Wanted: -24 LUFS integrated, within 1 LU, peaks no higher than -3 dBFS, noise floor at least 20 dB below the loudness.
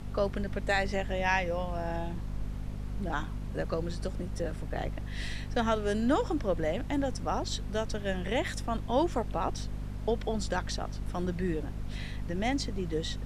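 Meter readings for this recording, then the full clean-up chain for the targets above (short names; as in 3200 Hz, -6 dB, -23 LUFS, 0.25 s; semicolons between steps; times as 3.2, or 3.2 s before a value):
hum 50 Hz; harmonics up to 250 Hz; hum level -35 dBFS; noise floor -39 dBFS; noise floor target -53 dBFS; loudness -33.0 LUFS; peak -15.0 dBFS; loudness target -24.0 LUFS
-> notches 50/100/150/200/250 Hz; noise print and reduce 14 dB; gain +9 dB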